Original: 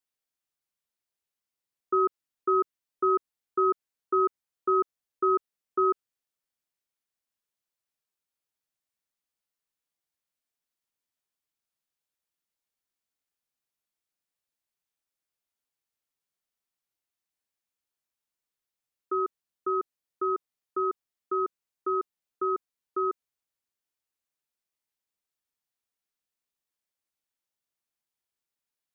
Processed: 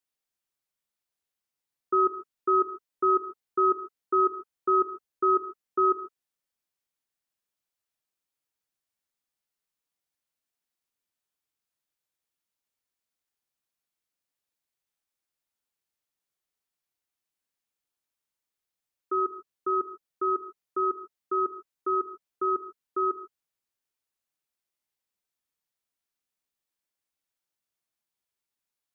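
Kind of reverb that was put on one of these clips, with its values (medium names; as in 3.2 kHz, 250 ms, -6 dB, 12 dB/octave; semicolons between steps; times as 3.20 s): gated-style reverb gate 170 ms flat, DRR 8 dB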